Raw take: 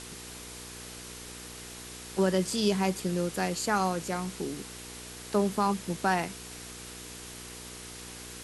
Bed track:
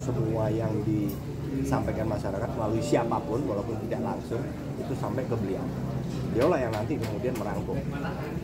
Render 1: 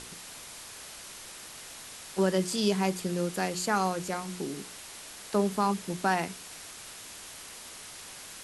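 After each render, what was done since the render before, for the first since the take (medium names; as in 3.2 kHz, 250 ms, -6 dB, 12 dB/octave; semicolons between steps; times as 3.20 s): de-hum 60 Hz, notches 8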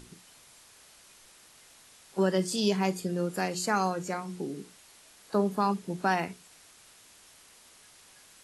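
noise print and reduce 11 dB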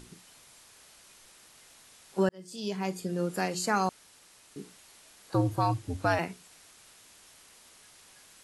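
2.29–3.25 s: fade in linear; 3.89–4.56 s: room tone; 5.34–6.19 s: frequency shift -84 Hz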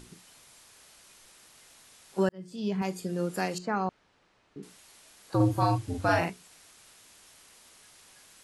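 2.32–2.82 s: tone controls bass +8 dB, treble -11 dB; 3.58–4.63 s: tape spacing loss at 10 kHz 31 dB; 5.36–6.30 s: doubling 41 ms -2 dB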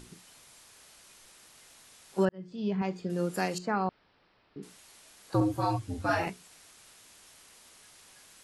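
2.25–3.10 s: distance through air 170 m; 3.72–4.62 s: careless resampling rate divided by 4×, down none, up filtered; 5.40–6.27 s: three-phase chorus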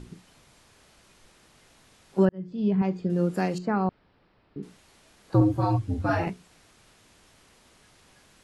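low-pass 3.6 kHz 6 dB/octave; bass shelf 390 Hz +9.5 dB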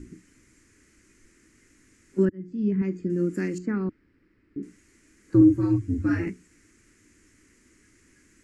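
FFT filter 100 Hz 0 dB, 150 Hz -6 dB, 310 Hz +8 dB, 730 Hz -23 dB, 1.4 kHz -5 dB, 2 kHz +2 dB, 3.6 kHz -16 dB, 7 kHz +3 dB, 11 kHz -7 dB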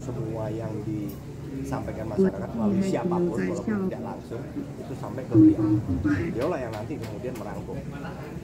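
add bed track -3.5 dB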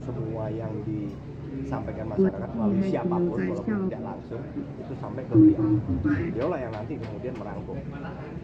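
distance through air 170 m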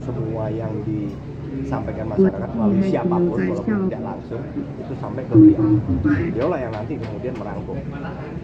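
trim +6.5 dB; peak limiter -1 dBFS, peak gain reduction 1 dB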